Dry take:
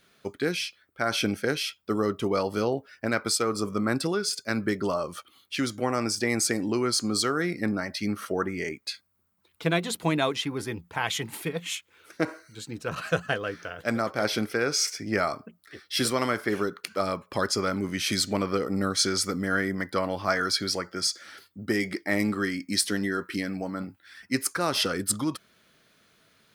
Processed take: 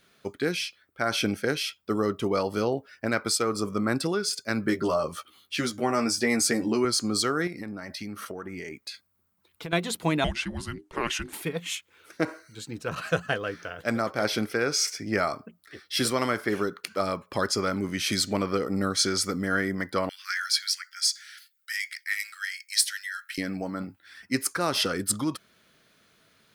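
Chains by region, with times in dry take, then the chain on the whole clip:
4.65–6.85 s: high-pass 49 Hz + doubling 13 ms -4 dB
7.47–9.73 s: peaking EQ 14 kHz +3.5 dB 0.3 oct + compression 10:1, threshold -32 dBFS
10.24–11.33 s: low-pass 11 kHz + bass shelf 370 Hz -4.5 dB + frequency shift -480 Hz
20.09–23.38 s: steep high-pass 1.5 kHz 48 dB/octave + treble shelf 5.8 kHz +4.5 dB
whole clip: none

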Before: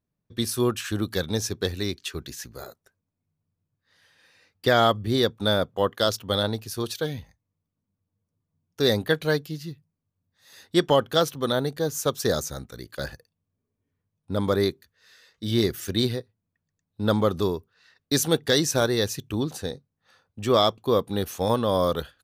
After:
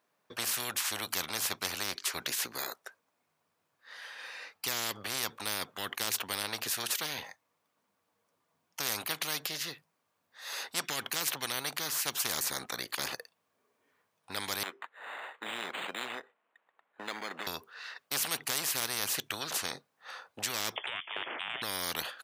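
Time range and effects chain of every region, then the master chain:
14.63–17.47 s: high-pass 330 Hz + compression 1.5:1, threshold -48 dBFS + decimation joined by straight lines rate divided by 8×
20.76–21.62 s: frequency inversion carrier 3.3 kHz + three bands compressed up and down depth 70%
whole clip: high-pass 840 Hz 12 dB/octave; treble shelf 2.6 kHz -11.5 dB; spectrum-flattening compressor 10:1

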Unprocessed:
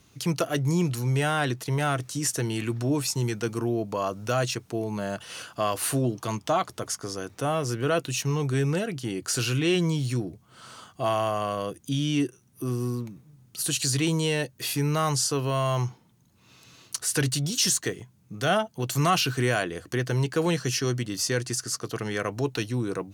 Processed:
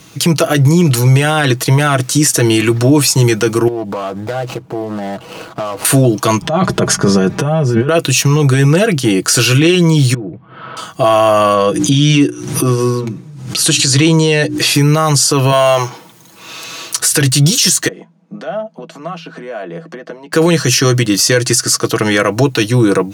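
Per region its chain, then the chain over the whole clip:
3.68–5.85 s: median filter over 25 samples + compression 10:1, threshold -35 dBFS + loudspeaker Doppler distortion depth 0.65 ms
6.42–7.89 s: RIAA curve playback + comb 5 ms, depth 67% + compressor with a negative ratio -29 dBFS
10.14–10.77 s: Bessel low-pass 1.8 kHz, order 6 + compression 4:1, threshold -40 dBFS
11.54–14.75 s: low-pass 7.5 kHz + hum notches 60/120/180/240/300/360 Hz + swell ahead of each attack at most 68 dB/s
15.52–16.96 s: companding laws mixed up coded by mu + tone controls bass -14 dB, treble -1 dB
17.88–20.33 s: compression 10:1, threshold -33 dBFS + rippled Chebyshev high-pass 160 Hz, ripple 9 dB + tape spacing loss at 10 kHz 23 dB
whole clip: high-pass 130 Hz 6 dB/octave; comb 6.2 ms, depth 47%; loudness maximiser +20 dB; trim -1 dB

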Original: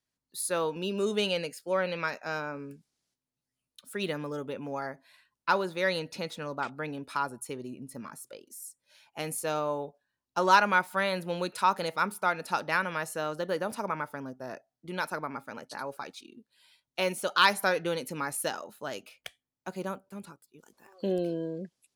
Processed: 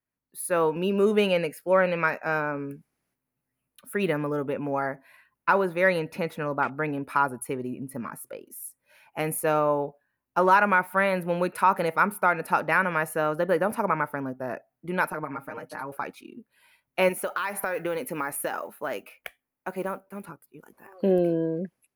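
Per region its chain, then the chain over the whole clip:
15.12–15.92 s: compression 2:1, threshold -45 dBFS + comb 6.5 ms, depth 91%
17.09–20.29 s: peaking EQ 110 Hz -9.5 dB 1.8 oct + compression 8:1, threshold -31 dBFS + modulation noise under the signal 26 dB
whole clip: high-order bell 5.2 kHz -14.5 dB; level rider gain up to 8.5 dB; loudness maximiser +7 dB; trim -8 dB

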